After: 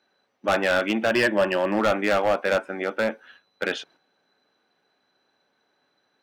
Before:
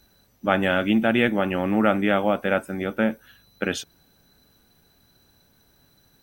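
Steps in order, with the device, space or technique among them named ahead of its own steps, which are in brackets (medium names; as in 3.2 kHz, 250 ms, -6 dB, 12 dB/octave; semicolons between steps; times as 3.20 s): walkie-talkie (band-pass 430–2900 Hz; hard clipper -20 dBFS, distortion -9 dB; gate -56 dBFS, range -7 dB); 1.10–1.79 s: rippled EQ curve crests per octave 1.3, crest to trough 9 dB; trim +4.5 dB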